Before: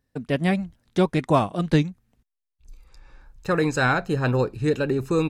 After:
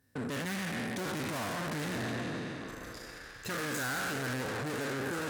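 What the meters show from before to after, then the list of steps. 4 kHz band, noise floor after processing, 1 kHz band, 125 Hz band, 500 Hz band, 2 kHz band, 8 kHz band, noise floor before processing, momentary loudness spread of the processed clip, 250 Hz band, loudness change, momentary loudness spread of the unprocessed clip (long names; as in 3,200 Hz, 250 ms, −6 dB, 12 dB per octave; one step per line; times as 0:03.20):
−4.0 dB, −49 dBFS, −11.0 dB, −14.5 dB, −14.0 dB, −6.5 dB, +2.0 dB, −83 dBFS, 10 LU, −12.5 dB, −12.5 dB, 7 LU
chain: peak hold with a decay on every bin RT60 1.89 s
tube saturation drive 34 dB, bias 0.45
high-pass filter 69 Hz
high-shelf EQ 5,800 Hz +11.5 dB
in parallel at −1 dB: downward compressor, threshold −43 dBFS, peak gain reduction 12 dB
on the sum: graphic EQ with 15 bands 100 Hz +5 dB, 250 Hz +6 dB, 1,600 Hz +7 dB
on a send: echo through a band-pass that steps 627 ms, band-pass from 610 Hz, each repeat 1.4 octaves, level −5 dB
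on the sum: level −6 dB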